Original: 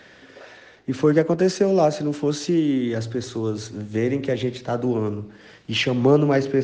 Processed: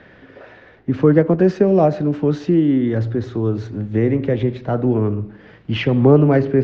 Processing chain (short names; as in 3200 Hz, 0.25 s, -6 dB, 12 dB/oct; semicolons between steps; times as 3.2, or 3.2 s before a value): LPF 2300 Hz 12 dB/oct; low shelf 210 Hz +8.5 dB; gain +2 dB